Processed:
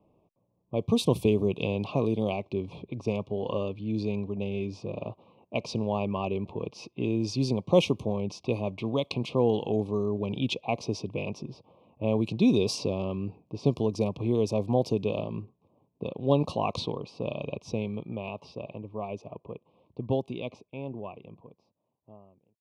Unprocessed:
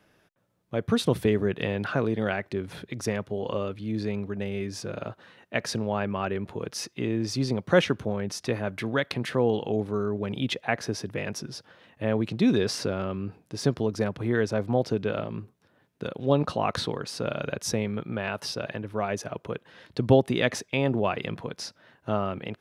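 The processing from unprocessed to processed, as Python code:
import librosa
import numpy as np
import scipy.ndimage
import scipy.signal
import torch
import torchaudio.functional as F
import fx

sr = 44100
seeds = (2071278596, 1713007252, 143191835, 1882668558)

y = fx.fade_out_tail(x, sr, length_s=6.66)
y = fx.env_lowpass(y, sr, base_hz=1100.0, full_db=-21.0)
y = scipy.signal.sosfilt(scipy.signal.ellip(3, 1.0, 40, [1100.0, 2400.0], 'bandstop', fs=sr, output='sos'), y)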